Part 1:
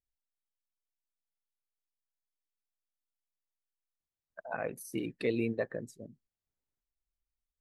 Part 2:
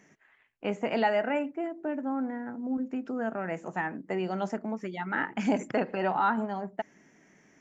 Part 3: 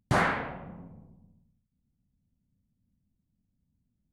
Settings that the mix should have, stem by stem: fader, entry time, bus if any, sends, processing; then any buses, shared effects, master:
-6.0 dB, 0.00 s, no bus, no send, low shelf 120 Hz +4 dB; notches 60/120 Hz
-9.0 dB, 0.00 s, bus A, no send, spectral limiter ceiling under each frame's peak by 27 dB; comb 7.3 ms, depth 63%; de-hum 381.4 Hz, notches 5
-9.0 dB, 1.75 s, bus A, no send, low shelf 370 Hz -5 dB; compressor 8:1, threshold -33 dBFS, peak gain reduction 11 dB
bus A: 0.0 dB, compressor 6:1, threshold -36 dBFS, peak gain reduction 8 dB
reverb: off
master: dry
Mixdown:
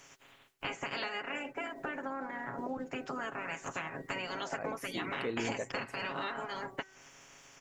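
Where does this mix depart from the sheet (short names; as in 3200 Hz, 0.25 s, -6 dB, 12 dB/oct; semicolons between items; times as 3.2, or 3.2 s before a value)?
stem 2 -9.0 dB -> +2.5 dB; stem 3: muted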